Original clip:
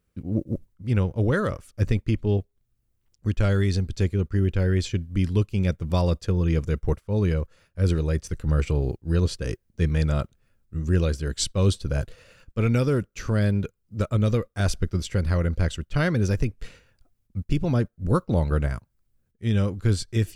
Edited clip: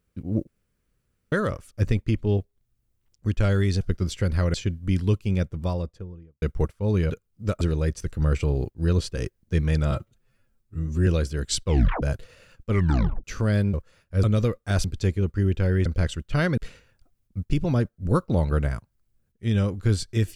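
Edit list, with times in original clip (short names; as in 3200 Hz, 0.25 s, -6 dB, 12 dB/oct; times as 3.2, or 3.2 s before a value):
0.47–1.32 room tone
3.81–4.82 swap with 14.74–15.47
5.44–6.7 studio fade out
7.38–7.88 swap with 13.62–14.13
10.18–10.95 stretch 1.5×
11.55 tape stop 0.36 s
12.59 tape stop 0.53 s
16.19–16.57 cut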